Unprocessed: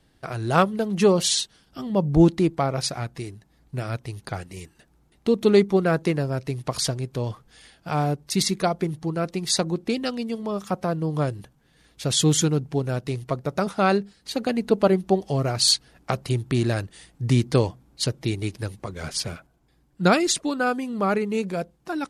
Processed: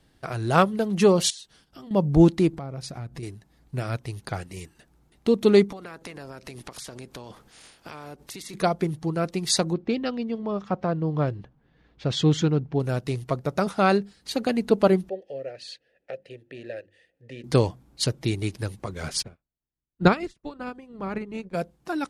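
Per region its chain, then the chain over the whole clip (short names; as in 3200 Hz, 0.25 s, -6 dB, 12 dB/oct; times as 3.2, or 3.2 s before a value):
1.3–1.91 gate -60 dBFS, range -7 dB + notches 50/100/150/200/250/300/350 Hz + compressor 5:1, threshold -41 dBFS
2.53–3.23 low shelf 430 Hz +10.5 dB + compressor 4:1, threshold -35 dBFS
5.71–8.53 spectral limiter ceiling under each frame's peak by 16 dB + compressor 10:1, threshold -36 dBFS
9.73–12.8 air absorption 190 m + mismatched tape noise reduction decoder only
15.09–17.44 vowel filter e + low shelf 65 Hz +11.5 dB + notches 50/100/150/200/250/300/350 Hz
19.21–21.53 spectral limiter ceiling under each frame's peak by 14 dB + RIAA curve playback + upward expander 2.5:1, over -37 dBFS
whole clip: dry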